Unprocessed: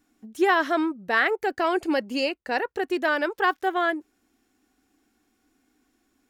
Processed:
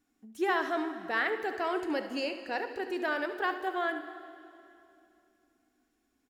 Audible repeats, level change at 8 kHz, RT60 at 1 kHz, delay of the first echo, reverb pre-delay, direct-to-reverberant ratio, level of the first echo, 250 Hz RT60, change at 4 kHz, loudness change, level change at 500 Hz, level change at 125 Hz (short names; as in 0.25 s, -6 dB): 1, n/a, 2.6 s, 72 ms, 4 ms, 7.0 dB, -12.0 dB, 3.1 s, -8.0 dB, -7.5 dB, -7.5 dB, n/a